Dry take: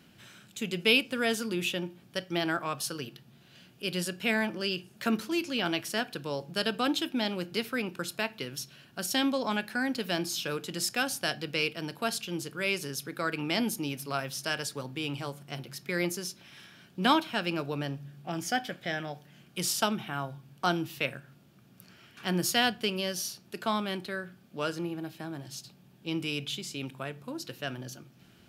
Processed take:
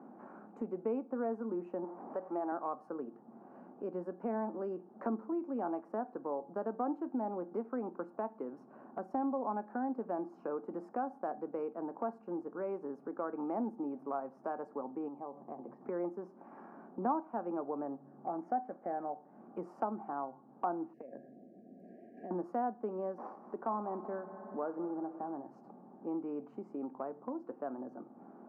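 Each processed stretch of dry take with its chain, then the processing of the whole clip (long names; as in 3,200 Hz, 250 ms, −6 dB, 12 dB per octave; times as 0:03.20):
0:01.84–0:02.52: converter with a step at zero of −39.5 dBFS + high-pass filter 360 Hz 6 dB per octave
0:15.08–0:15.81: downward compressor 2.5 to 1, threshold −42 dBFS + high-frequency loss of the air 200 metres + notch filter 1,400 Hz, Q 5.2
0:20.93–0:22.31: linear-phase brick-wall band-stop 750–1,600 Hz + downward compressor 10 to 1, threshold −41 dBFS
0:23.18–0:25.35: variable-slope delta modulation 32 kbit/s + echo machine with several playback heads 62 ms, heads first and third, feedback 71%, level −19.5 dB
whole clip: elliptic band-pass filter 230–1,100 Hz, stop band 50 dB; parametric band 790 Hz +9.5 dB 0.22 octaves; downward compressor 2 to 1, threshold −55 dBFS; level +9.5 dB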